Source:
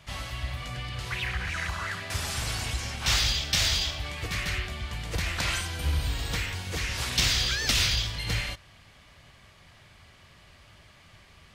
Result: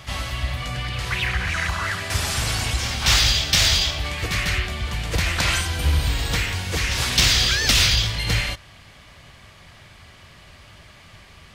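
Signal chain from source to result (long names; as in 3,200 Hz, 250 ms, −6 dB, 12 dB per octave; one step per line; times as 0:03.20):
backwards echo 264 ms −14.5 dB
gain into a clipping stage and back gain 16.5 dB
level +7.5 dB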